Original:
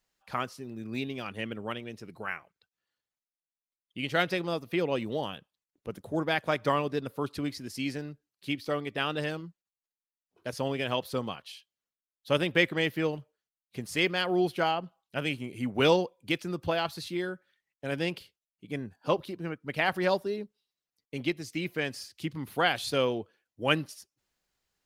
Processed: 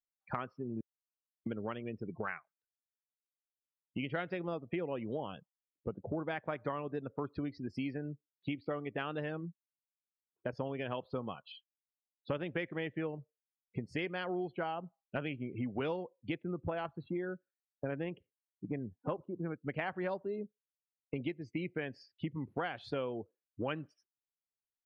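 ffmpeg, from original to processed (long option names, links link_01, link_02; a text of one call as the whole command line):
ffmpeg -i in.wav -filter_complex "[0:a]asettb=1/sr,asplit=3[link_01][link_02][link_03];[link_01]atrim=end=16.344[link_04];[link_02]atrim=start=16.34:end=19.54,asetpts=PTS-STARTPTS,afade=type=in:duration=0.004:curve=qsin,afade=type=out:start_time=3.196:duration=0.004:curve=qsin,adynamicsmooth=sensitivity=2:basefreq=2300[link_05];[link_03]atrim=start=19.536[link_06];[link_04][link_05]acrossfade=duration=0.004:curve1=hsin:curve2=qsin[link_07];[link_07][link_06]acrossfade=duration=0.004:curve1=qsin:curve2=hsin,asplit=3[link_08][link_09][link_10];[link_08]atrim=end=0.81,asetpts=PTS-STARTPTS,afade=type=out:start_time=0.806:duration=0.004:curve=hsin[link_11];[link_09]atrim=start=0.81:end=1.46,asetpts=PTS-STARTPTS,volume=0[link_12];[link_10]atrim=start=1.46,asetpts=PTS-STARTPTS,afade=type=in:duration=0.004:curve=hsin[link_13];[link_11][link_12][link_13]concat=n=3:v=0:a=1,afftdn=noise_reduction=35:noise_floor=-43,lowpass=2100,acompressor=threshold=-43dB:ratio=6,volume=7.5dB" out.wav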